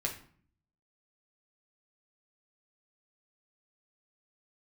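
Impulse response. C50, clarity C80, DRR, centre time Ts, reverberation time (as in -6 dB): 10.0 dB, 13.5 dB, -0.5 dB, 16 ms, 0.50 s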